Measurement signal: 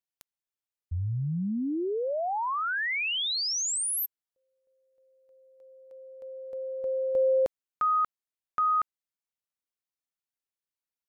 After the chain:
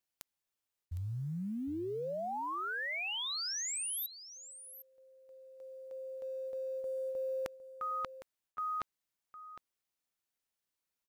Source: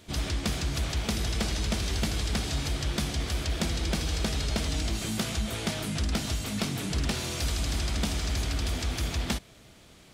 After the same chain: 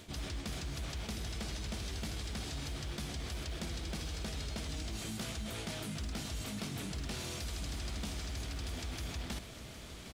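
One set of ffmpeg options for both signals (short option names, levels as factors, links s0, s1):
-af "areverse,acompressor=threshold=0.00794:ratio=5:attack=2.2:release=173:knee=6:detection=peak,areverse,acrusher=bits=9:mode=log:mix=0:aa=0.000001,aecho=1:1:759:0.211,volume=1.58"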